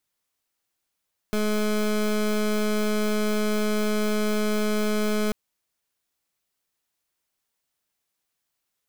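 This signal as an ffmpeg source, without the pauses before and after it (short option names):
-f lavfi -i "aevalsrc='0.0668*(2*lt(mod(212*t,1),0.23)-1)':d=3.99:s=44100"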